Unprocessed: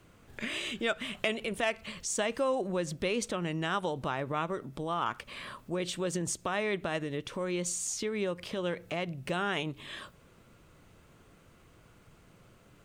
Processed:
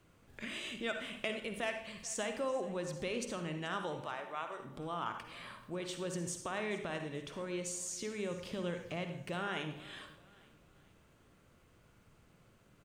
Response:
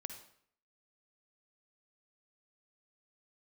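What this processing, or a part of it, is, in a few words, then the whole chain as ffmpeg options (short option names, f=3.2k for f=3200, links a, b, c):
bathroom: -filter_complex "[0:a]asettb=1/sr,asplit=3[a][b][c];[a]atrim=end=4.014[d];[b]atrim=start=4.01:end=4.6,asetpts=PTS-STARTPTS,afade=t=in:d=0.004:c=qsin,afade=t=out:st=0.586:d=0.004:c=qsin,highpass=560[e];[c]atrim=start=4.596[f];[d][e]acrossfade=d=0.004:c1=hsin:c2=qsin[g];[g][f]acrossfade=d=0.004:c1=qsin:c2=hsin,asettb=1/sr,asplit=3[h][i][j];[h]atrim=end=8.314[k];[i]atrim=start=8.31:end=9.08,asetpts=PTS-STARTPTS,afade=t=in:d=0.004:c=qsin,afade=t=out:st=0.766:d=0.004:c=qsin,bass=f=250:g=6,treble=f=4k:g=1[l];[j]atrim=start=9.076[m];[k][l]acrossfade=d=0.004:c1=hsin:c2=qsin[n];[n][m]acrossfade=d=0.004:c1=qsin:c2=hsin[o];[1:a]atrim=start_sample=2205[p];[o][p]afir=irnorm=-1:irlink=0,aecho=1:1:434|868|1302:0.1|0.041|0.0168,volume=-3.5dB"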